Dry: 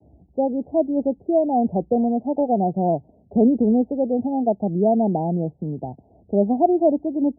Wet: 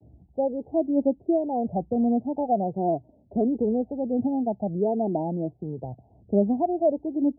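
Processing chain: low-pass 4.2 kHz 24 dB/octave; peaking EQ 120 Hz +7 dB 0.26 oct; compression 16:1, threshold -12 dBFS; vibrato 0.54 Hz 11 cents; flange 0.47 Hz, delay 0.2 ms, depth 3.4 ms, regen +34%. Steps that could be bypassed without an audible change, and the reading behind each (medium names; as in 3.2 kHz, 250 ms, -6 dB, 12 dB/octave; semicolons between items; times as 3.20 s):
low-pass 4.2 kHz: input has nothing above 910 Hz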